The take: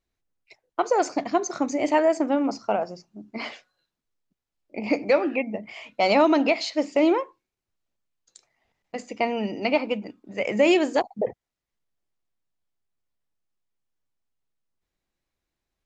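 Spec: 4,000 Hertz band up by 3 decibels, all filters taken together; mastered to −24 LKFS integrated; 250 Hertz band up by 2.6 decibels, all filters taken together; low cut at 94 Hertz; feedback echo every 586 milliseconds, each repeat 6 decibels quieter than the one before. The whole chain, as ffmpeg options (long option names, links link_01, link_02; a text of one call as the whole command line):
ffmpeg -i in.wav -af "highpass=94,equalizer=frequency=250:width_type=o:gain=3.5,equalizer=frequency=4000:width_type=o:gain=4,aecho=1:1:586|1172|1758|2344|2930|3516:0.501|0.251|0.125|0.0626|0.0313|0.0157,volume=-1dB" out.wav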